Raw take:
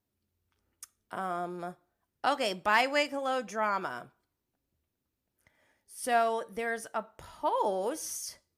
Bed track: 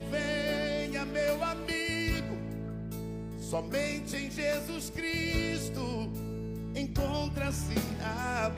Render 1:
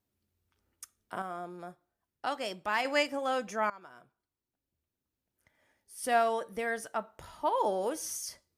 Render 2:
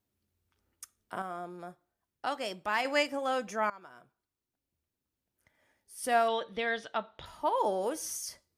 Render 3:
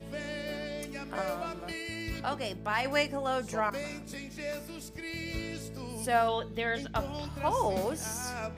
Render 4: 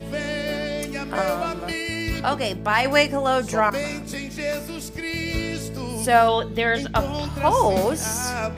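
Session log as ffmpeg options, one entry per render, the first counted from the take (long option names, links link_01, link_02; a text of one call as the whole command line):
ffmpeg -i in.wav -filter_complex "[0:a]asplit=4[link_01][link_02][link_03][link_04];[link_01]atrim=end=1.222[link_05];[link_02]atrim=start=1.218:end=2.852,asetpts=PTS-STARTPTS,volume=-5.5dB[link_06];[link_03]atrim=start=2.848:end=3.7,asetpts=PTS-STARTPTS,afade=type=out:start_time=0.848:duration=0.004:curve=hsin:silence=0.1[link_07];[link_04]atrim=start=3.7,asetpts=PTS-STARTPTS,afade=type=in:duration=2.47:silence=0.1[link_08];[link_05][link_06]acrossfade=duration=0.004:curve1=hsin:curve2=hsin[link_09];[link_07][link_08]concat=n=2:v=0:a=1[link_10];[link_09][link_10]acrossfade=duration=0.004:curve1=hsin:curve2=hsin" out.wav
ffmpeg -i in.wav -filter_complex "[0:a]asettb=1/sr,asplit=3[link_01][link_02][link_03];[link_01]atrim=end=6.284[link_04];[link_02]atrim=start=6.28:end=7.26,asetpts=PTS-STARTPTS,afade=type=in:duration=0.004:curve=qsin,afade=type=out:start_time=0.976:duration=0.004:curve=qsin,lowpass=frequency=3600:width_type=q:width=5.7[link_05];[link_03]atrim=start=7.256[link_06];[link_04][link_05]acrossfade=duration=0.004:curve1=hsin:curve2=qsin[link_07];[link_07][link_06]acrossfade=duration=0.004:curve1=qsin:curve2=hsin" out.wav
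ffmpeg -i in.wav -i bed.wav -filter_complex "[1:a]volume=-6dB[link_01];[0:a][link_01]amix=inputs=2:normalize=0" out.wav
ffmpeg -i in.wav -af "volume=10.5dB" out.wav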